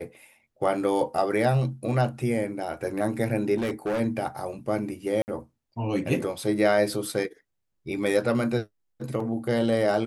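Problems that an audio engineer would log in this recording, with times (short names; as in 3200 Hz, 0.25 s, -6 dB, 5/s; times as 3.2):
3.56–4.01 clipped -23.5 dBFS
5.22–5.28 gap 59 ms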